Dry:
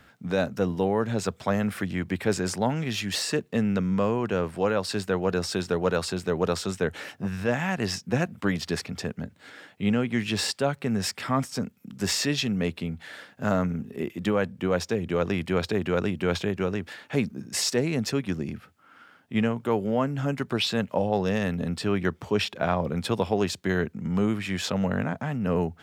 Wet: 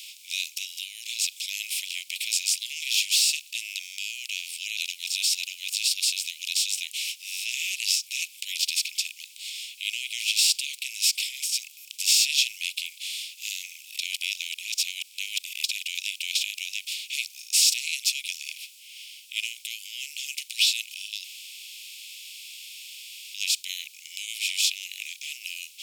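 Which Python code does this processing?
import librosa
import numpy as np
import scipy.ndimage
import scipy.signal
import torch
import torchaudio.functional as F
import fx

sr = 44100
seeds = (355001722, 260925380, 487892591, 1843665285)

y = fx.edit(x, sr, fx.reverse_span(start_s=4.77, length_s=1.23),
    fx.reverse_span(start_s=13.99, length_s=1.65),
    fx.room_tone_fill(start_s=21.24, length_s=2.1), tone=tone)
y = fx.bin_compress(y, sr, power=0.6)
y = scipy.signal.sosfilt(scipy.signal.butter(16, 2300.0, 'highpass', fs=sr, output='sos'), y)
y = fx.high_shelf(y, sr, hz=10000.0, db=10.5)
y = F.gain(torch.from_numpy(y), 3.0).numpy()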